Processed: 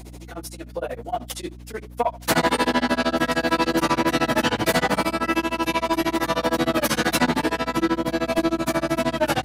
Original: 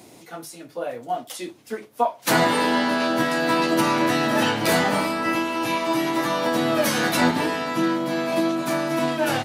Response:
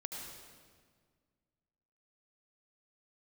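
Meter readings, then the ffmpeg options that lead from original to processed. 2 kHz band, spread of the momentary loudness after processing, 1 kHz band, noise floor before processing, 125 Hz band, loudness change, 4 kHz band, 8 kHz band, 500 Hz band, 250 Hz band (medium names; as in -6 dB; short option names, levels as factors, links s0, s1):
-0.5 dB, 13 LU, -0.5 dB, -48 dBFS, +0.5 dB, -0.5 dB, 0.0 dB, 0.0 dB, -0.5 dB, -0.5 dB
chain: -af "tremolo=f=13:d=1,aeval=exprs='val(0)+0.00562*(sin(2*PI*60*n/s)+sin(2*PI*2*60*n/s)/2+sin(2*PI*3*60*n/s)/3+sin(2*PI*4*60*n/s)/4+sin(2*PI*5*60*n/s)/5)':c=same,aeval=exprs='0.376*(cos(1*acos(clip(val(0)/0.376,-1,1)))-cos(1*PI/2))+0.0668*(cos(5*acos(clip(val(0)/0.376,-1,1)))-cos(5*PI/2))':c=same"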